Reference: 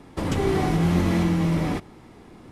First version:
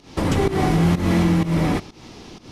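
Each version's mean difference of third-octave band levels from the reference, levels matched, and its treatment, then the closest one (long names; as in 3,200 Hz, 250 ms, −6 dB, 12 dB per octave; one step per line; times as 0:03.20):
2.5 dB: in parallel at +0.5 dB: brickwall limiter −18.5 dBFS, peak gain reduction 7 dB
on the sum: noise in a band 2,200–6,000 Hz −49 dBFS
fake sidechain pumping 126 BPM, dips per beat 1, −16 dB, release 193 ms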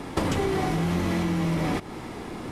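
6.0 dB: in parallel at 0 dB: brickwall limiter −20.5 dBFS, peak gain reduction 9 dB
on the sum: low-shelf EQ 270 Hz −5 dB
downward compressor 12 to 1, threshold −29 dBFS, peak gain reduction 13 dB
level +7 dB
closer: first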